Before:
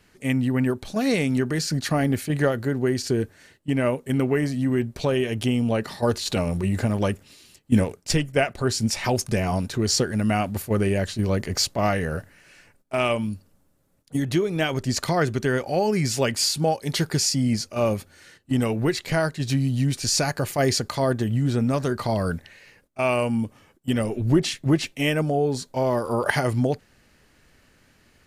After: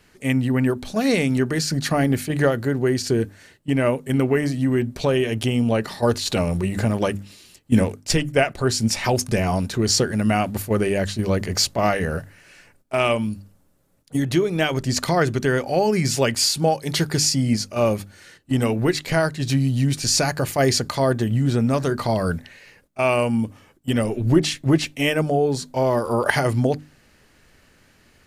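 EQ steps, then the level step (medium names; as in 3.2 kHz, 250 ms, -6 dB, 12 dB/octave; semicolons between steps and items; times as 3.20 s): hum notches 50/100/150/200/250/300 Hz; +3.0 dB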